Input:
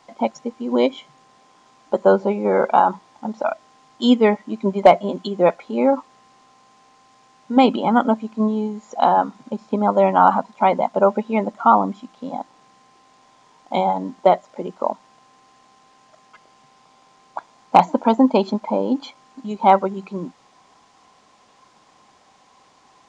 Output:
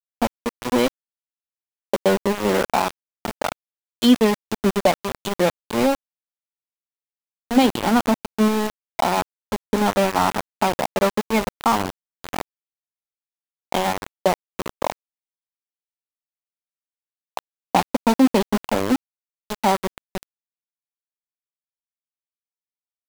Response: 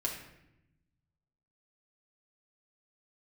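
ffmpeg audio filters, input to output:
-filter_complex "[0:a]acrossover=split=250|3000[s0][s1][s2];[s1]acompressor=threshold=0.0794:ratio=2.5[s3];[s0][s3][s2]amix=inputs=3:normalize=0,bandreject=f=313.5:t=h:w=4,bandreject=f=627:t=h:w=4,bandreject=f=940.5:t=h:w=4,bandreject=f=1254:t=h:w=4,bandreject=f=1567.5:t=h:w=4,bandreject=f=1881:t=h:w=4,aeval=exprs='val(0)*gte(abs(val(0)),0.0891)':c=same,volume=1.33"

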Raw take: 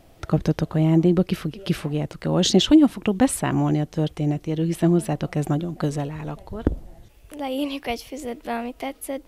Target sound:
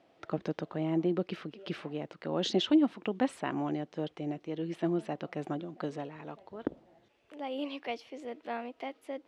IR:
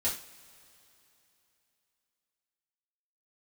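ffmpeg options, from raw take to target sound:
-af "highpass=270,lowpass=3700,volume=0.376"

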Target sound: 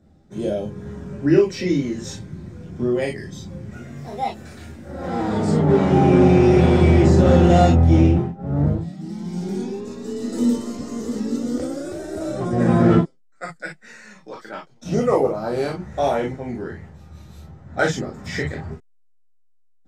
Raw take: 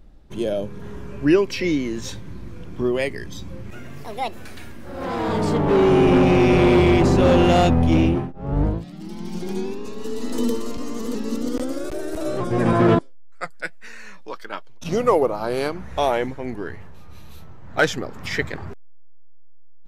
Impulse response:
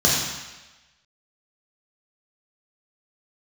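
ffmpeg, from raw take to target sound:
-filter_complex "[1:a]atrim=start_sample=2205,atrim=end_sample=3528,asetrate=52920,aresample=44100[s0];[0:a][s0]afir=irnorm=-1:irlink=0,volume=0.126"

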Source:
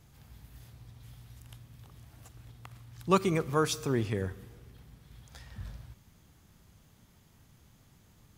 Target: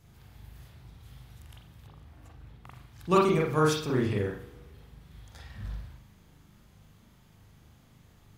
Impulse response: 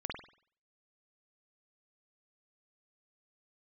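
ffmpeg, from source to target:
-filter_complex "[0:a]asettb=1/sr,asplit=3[s0][s1][s2];[s0]atrim=end=1.874[s3];[s1]atrim=start=1.87:end=2.66,asetpts=PTS-STARTPTS,afade=t=in:d=0.004:c=qsin,afade=t=out:st=0.786:d=0.004:c=qsin,equalizer=f=13000:t=o:w=2.7:g=-8.5[s4];[s2]atrim=start=2.656[s5];[s3][s4]acrossfade=d=0.004:c1=hsin:c2=qsin[s6];[s6][s5]acrossfade=d=0.004:c1=qsin:c2=hsin[s7];[1:a]atrim=start_sample=2205,asetrate=52920,aresample=44100[s8];[s7][s8]afir=irnorm=-1:irlink=0,volume=1.41"

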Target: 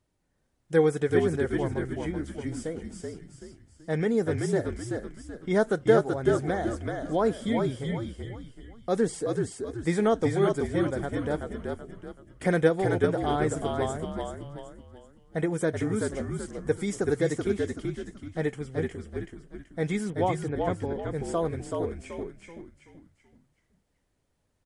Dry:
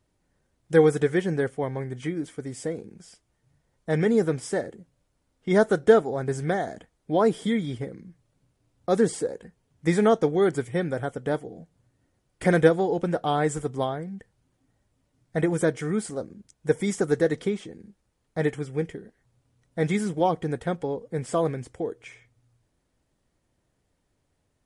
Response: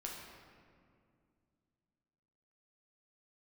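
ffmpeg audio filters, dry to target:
-filter_complex "[0:a]asettb=1/sr,asplit=3[s0][s1][s2];[s0]atrim=end=20.104[s3];[s1]atrim=start=20.1:end=20.85,asetpts=PTS-STARTPTS,afade=t=in:d=0.004:c=qsin,afade=t=out:st=0.746:d=0.004:c=qsin,lowpass=f=3400:w=0.5412,lowpass=f=3400:w=1.3066[s4];[s2]atrim=start=20.846[s5];[s3][s4]acrossfade=d=0.004:c1=hsin:c2=qsin[s6];[s6][s5]acrossfade=d=0.004:c1=qsin:c2=hsin,asplit=6[s7][s8][s9][s10][s11][s12];[s8]adelay=380,afreqshift=-55,volume=0.668[s13];[s9]adelay=760,afreqshift=-110,volume=0.26[s14];[s10]adelay=1140,afreqshift=-165,volume=0.101[s15];[s11]adelay=1520,afreqshift=-220,volume=0.0398[s16];[s12]adelay=1900,afreqshift=-275,volume=0.0155[s17];[s7][s13][s14][s15][s16][s17]amix=inputs=6:normalize=0,volume=0.631"

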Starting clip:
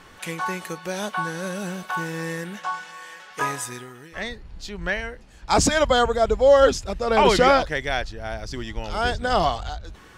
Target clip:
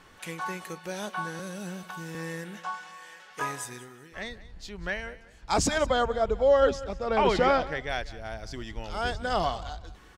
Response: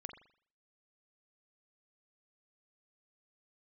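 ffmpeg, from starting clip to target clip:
-filter_complex "[0:a]asettb=1/sr,asplit=3[s0][s1][s2];[s0]atrim=end=1.394[s3];[s1]atrim=start=1.39:end=2.15,asetpts=PTS-STARTPTS,afade=t=in:d=0.004:c=qsin,afade=t=out:st=0.756:d=0.004:c=qsin,acrossover=split=320|3000[s4][s5][s6];[s5]acompressor=threshold=0.0224:ratio=6[s7];[s4][s7][s6]amix=inputs=3:normalize=0[s8];[s2]atrim=start=2.146[s9];[s3][s8]acrossfade=d=0.004:c1=hsin:c2=qsin[s10];[s10][s9]acrossfade=d=0.004:c1=qsin:c2=hsin,asettb=1/sr,asplit=3[s11][s12][s13];[s11]atrim=end=5.784[s14];[s12]atrim=start=5.78:end=7.89,asetpts=PTS-STARTPTS,afade=t=in:d=0.004:c=qsin,afade=t=out:st=2.106:d=0.004:c=qsin,aemphasis=mode=reproduction:type=50fm[s15];[s13]atrim=start=7.886[s16];[s14][s15]acrossfade=d=0.004:c1=hsin:c2=qsin[s17];[s17][s16]acrossfade=d=0.004:c1=qsin:c2=hsin,asplit=2[s18][s19];[s19]aecho=0:1:189|378:0.126|0.034[s20];[s18][s20]amix=inputs=2:normalize=0,volume=0.473"

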